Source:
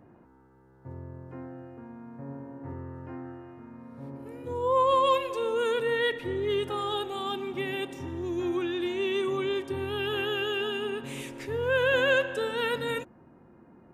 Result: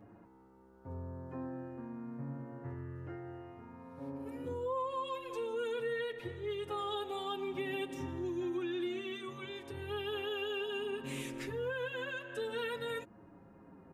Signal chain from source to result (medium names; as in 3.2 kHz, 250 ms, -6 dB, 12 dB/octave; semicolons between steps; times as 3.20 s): compression 6:1, threshold -35 dBFS, peak gain reduction 15.5 dB; endless flanger 6.7 ms -0.31 Hz; trim +1.5 dB